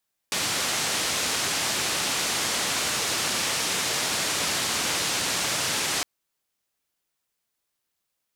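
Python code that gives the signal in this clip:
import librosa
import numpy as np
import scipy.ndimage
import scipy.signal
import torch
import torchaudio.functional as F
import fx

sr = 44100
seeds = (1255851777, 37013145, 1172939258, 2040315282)

y = fx.band_noise(sr, seeds[0], length_s=5.71, low_hz=95.0, high_hz=7500.0, level_db=-26.5)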